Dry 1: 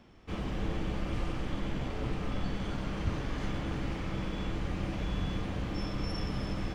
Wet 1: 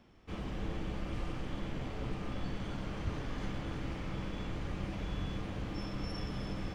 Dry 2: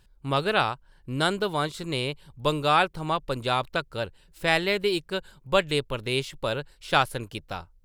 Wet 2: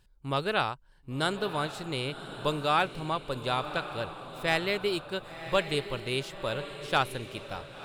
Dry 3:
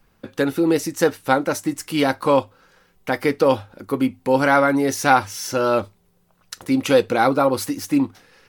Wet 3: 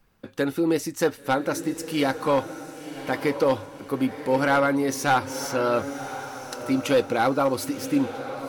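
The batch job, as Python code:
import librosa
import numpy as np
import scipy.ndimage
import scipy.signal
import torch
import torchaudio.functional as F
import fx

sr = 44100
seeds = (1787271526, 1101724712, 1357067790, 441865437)

y = np.clip(x, -10.0 ** (-9.0 / 20.0), 10.0 ** (-9.0 / 20.0))
y = fx.echo_diffused(y, sr, ms=1063, feedback_pct=40, wet_db=-11.0)
y = y * librosa.db_to_amplitude(-4.5)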